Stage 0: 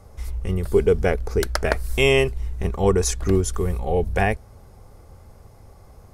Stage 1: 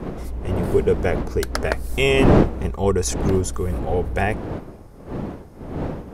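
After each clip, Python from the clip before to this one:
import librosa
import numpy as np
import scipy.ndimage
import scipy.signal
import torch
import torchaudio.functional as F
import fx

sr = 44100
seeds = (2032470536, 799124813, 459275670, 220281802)

y = fx.dmg_wind(x, sr, seeds[0], corner_hz=370.0, level_db=-24.0)
y = y * 10.0 ** (-1.0 / 20.0)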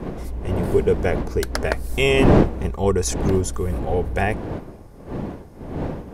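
y = fx.notch(x, sr, hz=1300.0, q=15.0)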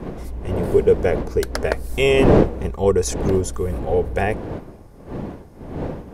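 y = fx.dynamic_eq(x, sr, hz=480.0, q=2.3, threshold_db=-33.0, ratio=4.0, max_db=6)
y = y * 10.0 ** (-1.0 / 20.0)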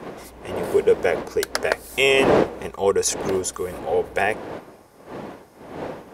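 y = fx.highpass(x, sr, hz=850.0, slope=6)
y = y * 10.0 ** (4.5 / 20.0)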